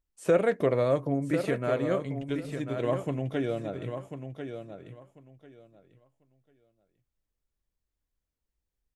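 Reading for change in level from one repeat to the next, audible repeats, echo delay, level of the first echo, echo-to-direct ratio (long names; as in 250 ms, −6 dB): −14.5 dB, 2, 1,044 ms, −8.5 dB, −8.5 dB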